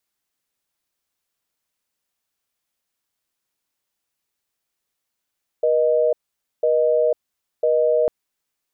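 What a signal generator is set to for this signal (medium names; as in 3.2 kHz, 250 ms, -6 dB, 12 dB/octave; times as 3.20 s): call progress tone busy tone, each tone -17.5 dBFS 2.45 s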